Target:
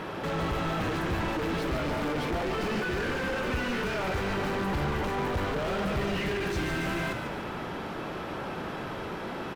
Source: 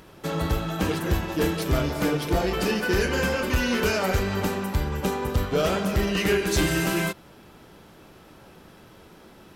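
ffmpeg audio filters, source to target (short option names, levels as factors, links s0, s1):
-filter_complex "[0:a]asplit=2[s0][s1];[s1]highpass=f=720:p=1,volume=50.1,asoftclip=type=tanh:threshold=0.178[s2];[s0][s2]amix=inputs=2:normalize=0,lowpass=f=1600:p=1,volume=0.501,volume=13.3,asoftclip=hard,volume=0.075,bass=f=250:g=6,treble=f=4000:g=-4,asplit=2[s3][s4];[s4]asplit=7[s5][s6][s7][s8][s9][s10][s11];[s5]adelay=144,afreqshift=-52,volume=0.398[s12];[s6]adelay=288,afreqshift=-104,volume=0.219[s13];[s7]adelay=432,afreqshift=-156,volume=0.12[s14];[s8]adelay=576,afreqshift=-208,volume=0.0661[s15];[s9]adelay=720,afreqshift=-260,volume=0.0363[s16];[s10]adelay=864,afreqshift=-312,volume=0.02[s17];[s11]adelay=1008,afreqshift=-364,volume=0.011[s18];[s12][s13][s14][s15][s16][s17][s18]amix=inputs=7:normalize=0[s19];[s3][s19]amix=inputs=2:normalize=0,volume=0.422"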